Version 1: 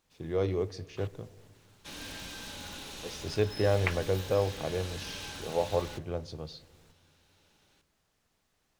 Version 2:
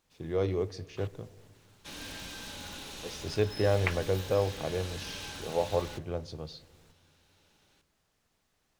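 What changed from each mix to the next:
no change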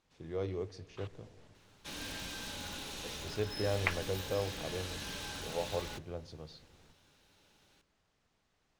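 first voice -7.5 dB; second voice: add distance through air 65 m

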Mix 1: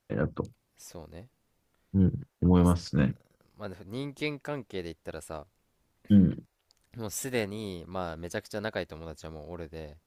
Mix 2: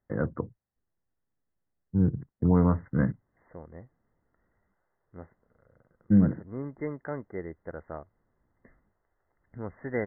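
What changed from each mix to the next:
second voice: entry +2.60 s; master: add brick-wall FIR low-pass 2.1 kHz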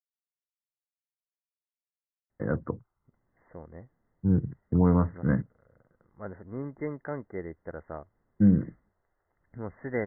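first voice: entry +2.30 s

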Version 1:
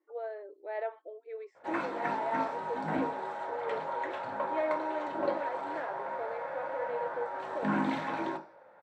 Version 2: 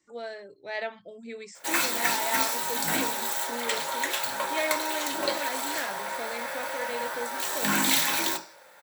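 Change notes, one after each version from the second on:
speech: remove brick-wall FIR high-pass 290 Hz; master: remove low-pass 1 kHz 12 dB/octave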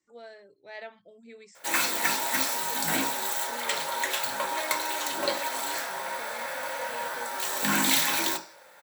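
speech -8.5 dB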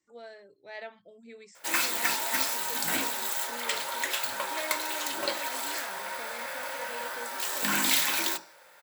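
background: send -7.0 dB

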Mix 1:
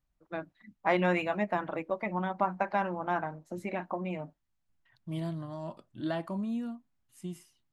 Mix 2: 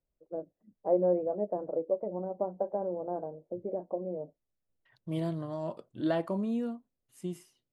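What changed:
first voice: add four-pole ladder low-pass 700 Hz, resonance 40%; master: add peaking EQ 460 Hz +12 dB 0.73 oct

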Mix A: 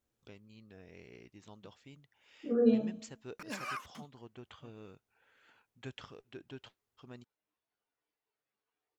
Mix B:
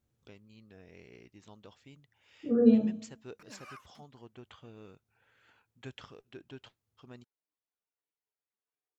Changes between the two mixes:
second voice: add peaking EQ 110 Hz +13.5 dB 1.8 oct; background -10.0 dB

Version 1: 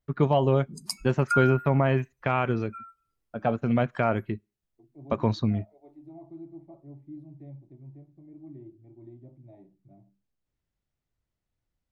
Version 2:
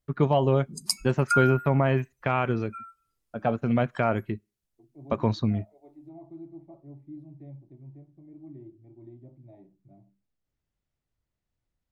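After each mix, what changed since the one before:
background: add peaking EQ 9 kHz +7 dB 3 oct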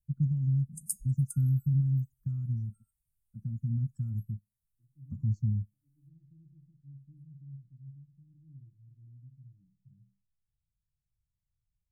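master: add inverse Chebyshev band-stop 390–4000 Hz, stop band 50 dB

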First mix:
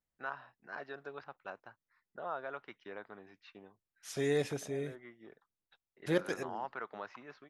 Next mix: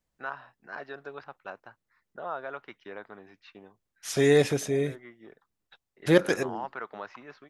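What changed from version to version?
first voice +4.5 dB; second voice +11.0 dB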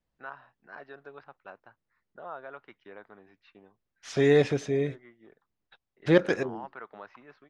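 first voice -5.0 dB; master: add distance through air 130 m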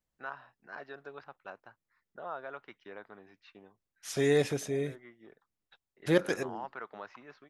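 second voice -5.5 dB; master: remove distance through air 130 m

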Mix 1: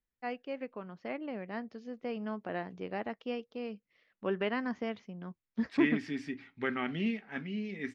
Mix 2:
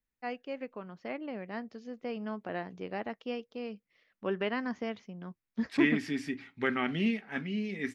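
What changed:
second voice +3.0 dB; master: remove distance through air 66 m

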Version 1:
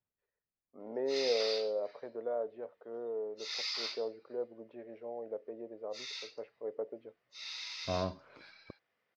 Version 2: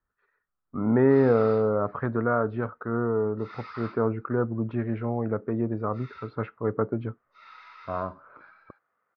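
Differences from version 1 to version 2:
first voice: remove ladder band-pass 640 Hz, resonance 50%; master: add resonant low-pass 1.3 kHz, resonance Q 5.3

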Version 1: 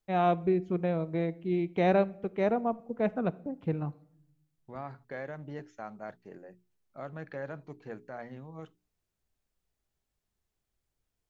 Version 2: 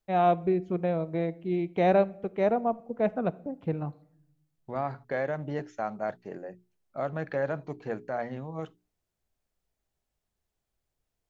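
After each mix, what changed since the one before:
second voice +7.0 dB; master: add peaking EQ 650 Hz +4 dB 0.88 oct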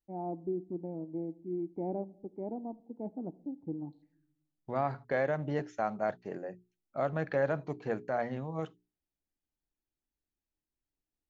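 first voice: add cascade formant filter u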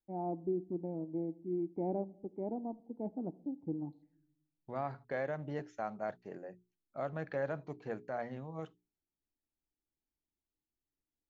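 second voice -6.5 dB

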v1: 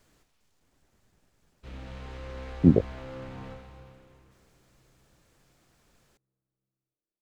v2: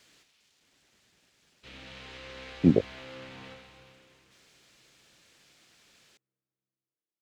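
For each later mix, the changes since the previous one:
background -4.0 dB; master: add frequency weighting D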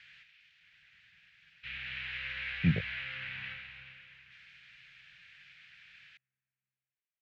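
master: add FFT filter 160 Hz 0 dB, 290 Hz -23 dB, 1.1 kHz -9 dB, 1.6 kHz +10 dB, 2.5 kHz +11 dB, 9.6 kHz -26 dB

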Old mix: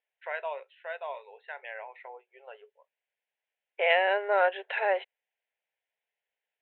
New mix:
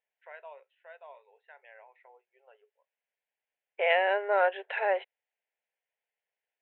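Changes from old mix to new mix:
first voice -11.5 dB; master: add distance through air 190 m

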